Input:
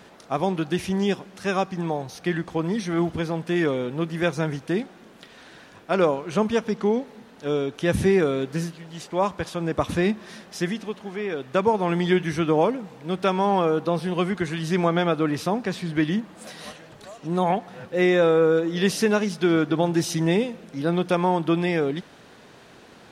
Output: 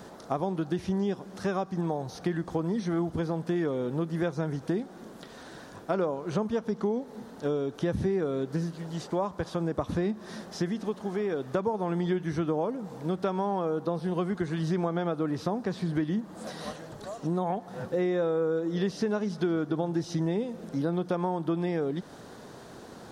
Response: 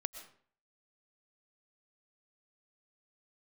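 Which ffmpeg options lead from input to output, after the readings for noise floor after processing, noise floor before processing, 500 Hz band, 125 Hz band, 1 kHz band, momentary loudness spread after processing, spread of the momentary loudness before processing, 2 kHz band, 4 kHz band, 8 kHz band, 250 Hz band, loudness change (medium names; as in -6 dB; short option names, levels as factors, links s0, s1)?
-47 dBFS, -49 dBFS, -6.5 dB, -4.5 dB, -8.0 dB, 10 LU, 10 LU, -12.0 dB, -11.0 dB, -11.0 dB, -5.5 dB, -6.5 dB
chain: -filter_complex "[0:a]acrossover=split=5100[s0][s1];[s1]acompressor=threshold=0.00158:ratio=4:attack=1:release=60[s2];[s0][s2]amix=inputs=2:normalize=0,equalizer=f=2500:t=o:w=1.1:g=-12,acompressor=threshold=0.0282:ratio=4,volume=1.58"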